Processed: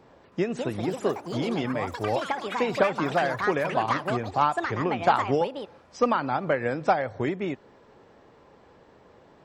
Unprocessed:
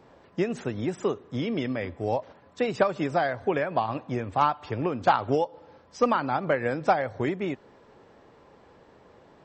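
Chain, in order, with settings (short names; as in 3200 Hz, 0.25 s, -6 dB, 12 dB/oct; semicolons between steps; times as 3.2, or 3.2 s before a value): echoes that change speed 0.318 s, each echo +6 st, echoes 3, each echo -6 dB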